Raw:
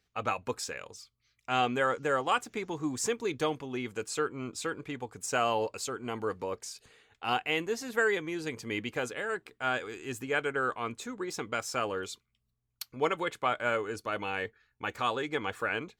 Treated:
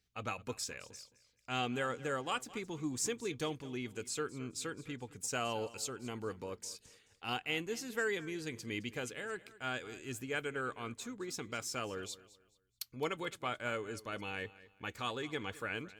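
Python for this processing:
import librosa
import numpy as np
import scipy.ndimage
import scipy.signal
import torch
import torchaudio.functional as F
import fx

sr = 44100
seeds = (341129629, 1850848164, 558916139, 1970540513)

p1 = fx.peak_eq(x, sr, hz=870.0, db=-9.0, octaves=2.7)
p2 = p1 + fx.echo_feedback(p1, sr, ms=215, feedback_pct=30, wet_db=-18.5, dry=0)
y = p2 * librosa.db_to_amplitude(-1.5)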